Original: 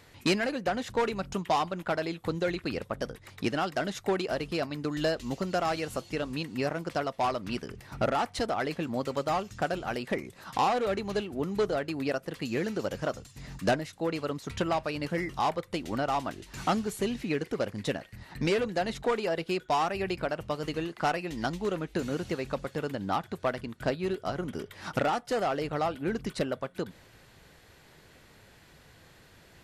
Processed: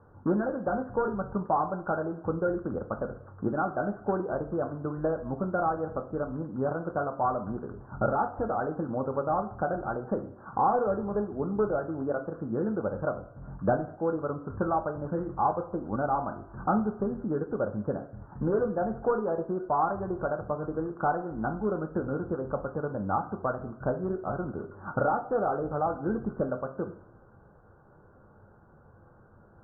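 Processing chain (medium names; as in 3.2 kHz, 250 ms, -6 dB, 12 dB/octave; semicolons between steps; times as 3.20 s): steep low-pass 1.5 kHz 96 dB/octave; two-slope reverb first 0.43 s, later 1.5 s, DRR 4.5 dB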